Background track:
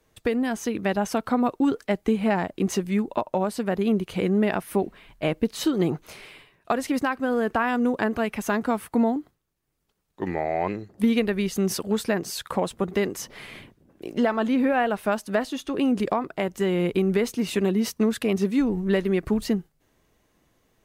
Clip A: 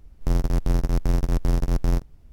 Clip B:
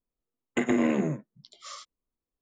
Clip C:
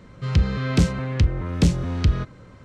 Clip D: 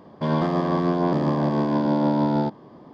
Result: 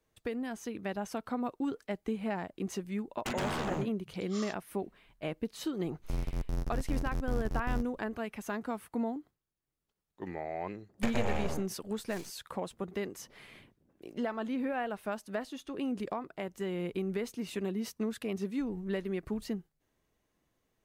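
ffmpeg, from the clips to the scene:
ffmpeg -i bed.wav -i cue0.wav -i cue1.wav -filter_complex "[2:a]asplit=2[link_01][link_02];[0:a]volume=-12dB[link_03];[link_01]aeval=exprs='0.0447*(abs(mod(val(0)/0.0447+3,4)-2)-1)':channel_layout=same[link_04];[link_02]aeval=exprs='abs(val(0))':channel_layout=same[link_05];[link_04]atrim=end=2.41,asetpts=PTS-STARTPTS,volume=-2.5dB,afade=type=in:duration=0.004:curve=hsin,afade=type=out:start_time=2.406:duration=0.004:curve=hsin,adelay=2690[link_06];[1:a]atrim=end=2.32,asetpts=PTS-STARTPTS,volume=-12.5dB,afade=type=in:duration=0.004:curve=hsin,afade=type=out:start_time=2.316:duration=0.004:curve=hsin,adelay=5830[link_07];[link_05]atrim=end=2.41,asetpts=PTS-STARTPTS,volume=-5.5dB,afade=type=in:duration=0.004:curve=hsin,afade=type=out:start_time=2.406:duration=0.004:curve=hsin,adelay=10460[link_08];[link_03][link_06][link_07][link_08]amix=inputs=4:normalize=0" out.wav

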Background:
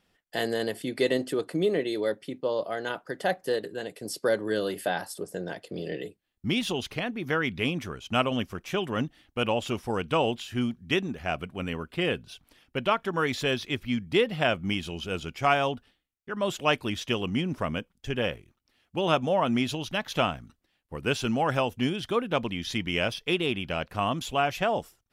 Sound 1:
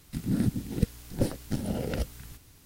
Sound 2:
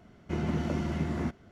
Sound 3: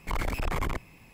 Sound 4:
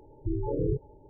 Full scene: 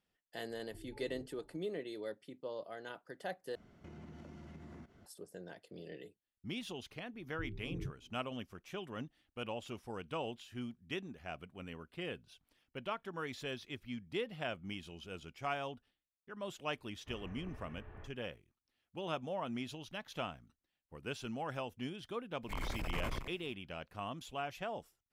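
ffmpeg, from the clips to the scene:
ffmpeg -i bed.wav -i cue0.wav -i cue1.wav -i cue2.wav -i cue3.wav -filter_complex "[4:a]asplit=2[link_01][link_02];[2:a]asplit=2[link_03][link_04];[0:a]volume=-15dB[link_05];[link_01]acompressor=threshold=-38dB:ratio=6:attack=3.2:release=140:knee=1:detection=peak[link_06];[link_03]acompressor=threshold=-43dB:ratio=6:attack=3.2:release=140:knee=1:detection=peak[link_07];[link_02]lowpass=frequency=230:width_type=q:width=4.9[link_08];[link_04]highpass=frequency=240:width_type=q:width=0.5412,highpass=frequency=240:width_type=q:width=1.307,lowpass=frequency=3100:width_type=q:width=0.5176,lowpass=frequency=3100:width_type=q:width=0.7071,lowpass=frequency=3100:width_type=q:width=1.932,afreqshift=-270[link_09];[3:a]aecho=1:1:93:0.531[link_10];[link_05]asplit=2[link_11][link_12];[link_11]atrim=end=3.554[link_13];[link_07]atrim=end=1.51,asetpts=PTS-STARTPTS,volume=-6.5dB[link_14];[link_12]atrim=start=5.056[link_15];[link_06]atrim=end=1.09,asetpts=PTS-STARTPTS,volume=-12.5dB,afade=type=in:duration=0.004:curve=hsin,afade=type=out:start_time=1.086:duration=0.004:curve=hsin,adelay=490[link_16];[link_08]atrim=end=1.09,asetpts=PTS-STARTPTS,volume=-15dB,afade=type=in:duration=0.004:curve=hsin,afade=type=out:start_time=1.086:duration=0.004:curve=hsin,adelay=7130[link_17];[link_09]atrim=end=1.51,asetpts=PTS-STARTPTS,volume=-15.5dB,afade=type=in:duration=0.004:curve=hsin,afade=type=out:start_time=1.506:duration=0.004:curve=hsin,adelay=16770[link_18];[link_10]atrim=end=1.13,asetpts=PTS-STARTPTS,volume=-11dB,afade=type=in:duration=0.02,afade=type=out:start_time=1.11:duration=0.02,adelay=22420[link_19];[link_13][link_14]acrossfade=duration=0.004:curve1=hsin:curve2=hsin[link_20];[link_20][link_15]acrossfade=duration=0.004:curve1=hsin:curve2=hsin[link_21];[link_21][link_16][link_17][link_18][link_19]amix=inputs=5:normalize=0" out.wav

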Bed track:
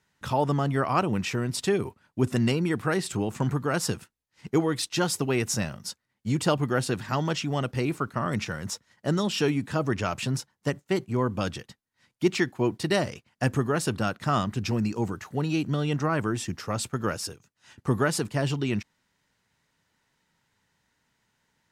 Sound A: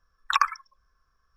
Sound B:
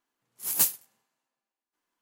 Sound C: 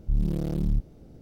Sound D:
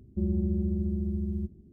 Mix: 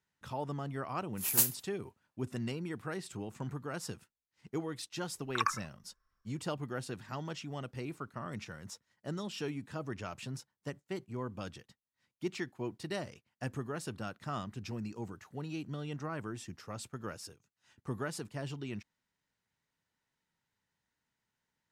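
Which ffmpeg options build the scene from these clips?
ffmpeg -i bed.wav -i cue0.wav -i cue1.wav -filter_complex "[0:a]volume=-13.5dB[link_01];[2:a]atrim=end=2.01,asetpts=PTS-STARTPTS,volume=-3.5dB,afade=type=in:duration=0.004:curve=hsin,afade=type=out:start_time=2.006:duration=0.004:curve=hsin,adelay=780[link_02];[1:a]atrim=end=1.36,asetpts=PTS-STARTPTS,volume=-9.5dB,afade=type=in:duration=0.004:curve=hsin,afade=type=out:start_time=1.356:duration=0.004:curve=hsin,adelay=222705S[link_03];[link_01][link_02][link_03]amix=inputs=3:normalize=0" out.wav

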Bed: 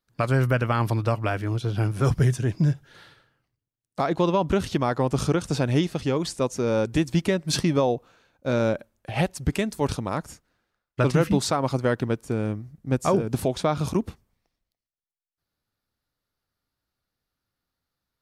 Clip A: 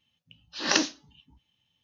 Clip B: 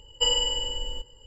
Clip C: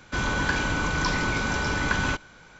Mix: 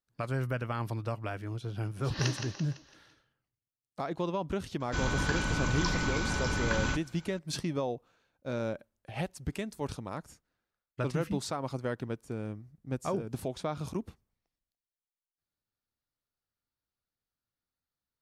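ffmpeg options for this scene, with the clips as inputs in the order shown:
ffmpeg -i bed.wav -i cue0.wav -i cue1.wav -i cue2.wav -filter_complex "[0:a]volume=-11dB[link_01];[1:a]aecho=1:1:168|336|504|672|840:0.473|0.213|0.0958|0.0431|0.0194[link_02];[3:a]bass=frequency=250:gain=5,treble=frequency=4000:gain=5[link_03];[link_02]atrim=end=1.83,asetpts=PTS-STARTPTS,volume=-12dB,afade=type=in:duration=0.004:curve=hsin,afade=type=out:start_time=1.826:duration=0.004:curve=hsin,adelay=1500[link_04];[link_03]atrim=end=2.59,asetpts=PTS-STARTPTS,volume=-7.5dB,afade=type=in:duration=0.004:curve=hsin,afade=type=out:start_time=2.586:duration=0.004:curve=hsin,adelay=4800[link_05];[link_01][link_04][link_05]amix=inputs=3:normalize=0" out.wav

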